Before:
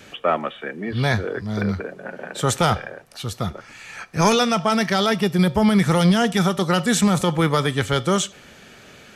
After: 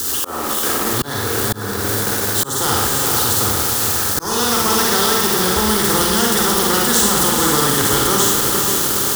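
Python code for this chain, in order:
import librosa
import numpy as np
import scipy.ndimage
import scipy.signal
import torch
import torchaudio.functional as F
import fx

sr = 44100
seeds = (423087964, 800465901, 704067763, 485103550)

p1 = x + 0.5 * 10.0 ** (-24.0 / 20.0) * np.diff(np.sign(x), prepend=np.sign(x[:1]))
p2 = scipy.signal.sosfilt(scipy.signal.butter(2, 44.0, 'highpass', fs=sr, output='sos'), p1)
p3 = fx.low_shelf(p2, sr, hz=360.0, db=10.0)
p4 = fx.fixed_phaser(p3, sr, hz=630.0, stages=6)
p5 = p4 + fx.echo_diffused(p4, sr, ms=463, feedback_pct=56, wet_db=-8, dry=0)
p6 = fx.rev_schroeder(p5, sr, rt60_s=0.6, comb_ms=38, drr_db=-1.0)
p7 = np.where(np.abs(p6) >= 10.0 ** (-23.0 / 20.0), p6, 0.0)
p8 = p6 + (p7 * 10.0 ** (-7.0 / 20.0))
p9 = fx.auto_swell(p8, sr, attack_ms=405.0)
p10 = fx.spectral_comp(p9, sr, ratio=2.0)
y = p10 * 10.0 ** (-2.5 / 20.0)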